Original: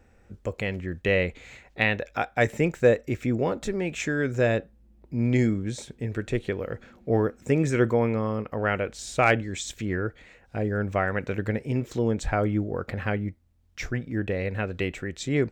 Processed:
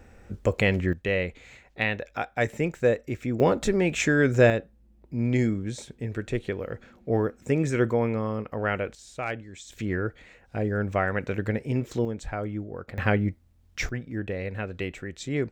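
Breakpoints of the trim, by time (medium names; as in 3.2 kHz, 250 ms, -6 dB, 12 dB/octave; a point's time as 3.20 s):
+7 dB
from 0.93 s -3 dB
from 3.40 s +5 dB
from 4.50 s -1.5 dB
from 8.95 s -11 dB
from 9.72 s 0 dB
from 12.05 s -7 dB
from 12.98 s +4.5 dB
from 13.89 s -3.5 dB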